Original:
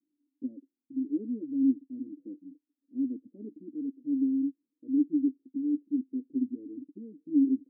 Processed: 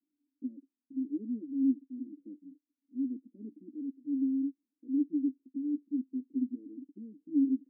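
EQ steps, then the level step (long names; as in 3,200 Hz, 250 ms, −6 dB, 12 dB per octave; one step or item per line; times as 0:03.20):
four-pole ladder band-pass 260 Hz, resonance 45%
+4.5 dB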